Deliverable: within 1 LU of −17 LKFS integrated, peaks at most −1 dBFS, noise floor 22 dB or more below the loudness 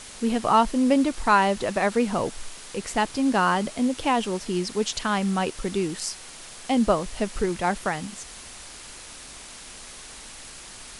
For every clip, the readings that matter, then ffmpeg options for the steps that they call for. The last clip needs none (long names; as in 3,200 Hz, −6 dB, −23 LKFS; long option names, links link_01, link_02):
background noise floor −43 dBFS; target noise floor −47 dBFS; integrated loudness −24.5 LKFS; sample peak −6.5 dBFS; target loudness −17.0 LKFS
→ -af "afftdn=noise_reduction=6:noise_floor=-43"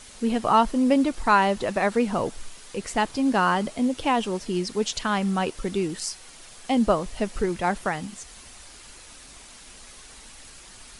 background noise floor −47 dBFS; integrated loudness −24.5 LKFS; sample peak −6.5 dBFS; target loudness −17.0 LKFS
→ -af "volume=7.5dB,alimiter=limit=-1dB:level=0:latency=1"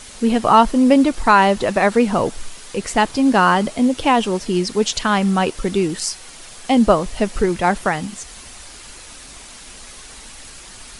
integrated loudness −17.0 LKFS; sample peak −1.0 dBFS; background noise floor −39 dBFS